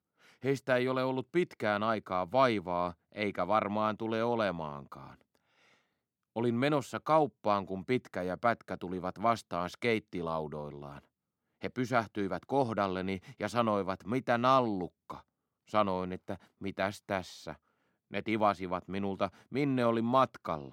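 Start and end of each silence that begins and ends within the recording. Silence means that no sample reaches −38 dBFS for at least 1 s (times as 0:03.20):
0:05.04–0:06.36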